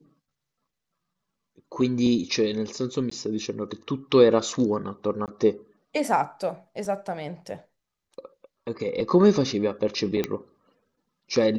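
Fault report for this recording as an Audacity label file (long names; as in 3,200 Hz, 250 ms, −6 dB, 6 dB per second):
3.100000	3.110000	drop-out 14 ms
5.260000	5.280000	drop-out 18 ms
6.850000	6.850000	drop-out 2.2 ms
10.240000	10.240000	click −12 dBFS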